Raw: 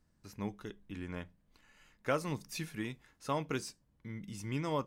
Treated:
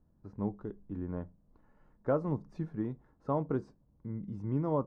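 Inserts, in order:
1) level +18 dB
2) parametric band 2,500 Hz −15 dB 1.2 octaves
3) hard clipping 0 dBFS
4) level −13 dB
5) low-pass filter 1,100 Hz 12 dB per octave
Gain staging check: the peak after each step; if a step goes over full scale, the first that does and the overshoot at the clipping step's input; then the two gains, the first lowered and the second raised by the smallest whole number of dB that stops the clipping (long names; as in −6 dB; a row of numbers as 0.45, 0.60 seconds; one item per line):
−2.0, −3.5, −3.5, −16.5, −18.0 dBFS
no step passes full scale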